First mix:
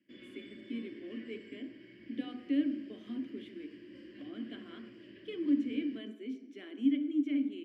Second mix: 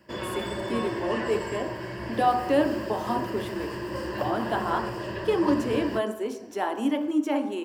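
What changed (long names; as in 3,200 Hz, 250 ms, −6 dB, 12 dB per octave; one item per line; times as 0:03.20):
background +5.0 dB
master: remove formant filter i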